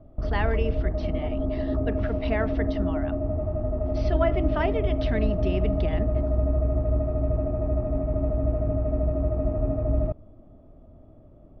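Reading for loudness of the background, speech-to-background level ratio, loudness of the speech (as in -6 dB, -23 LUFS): -27.0 LUFS, -5.0 dB, -32.0 LUFS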